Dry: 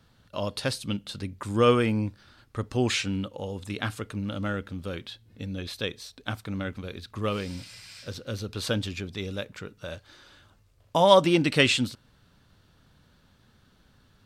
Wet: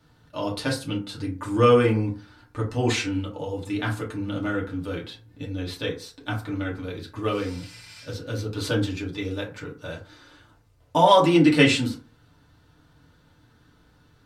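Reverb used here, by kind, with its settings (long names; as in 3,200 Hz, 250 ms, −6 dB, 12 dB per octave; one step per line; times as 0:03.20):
feedback delay network reverb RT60 0.39 s, low-frequency decay 0.95×, high-frequency decay 0.45×, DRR −4.5 dB
level −3 dB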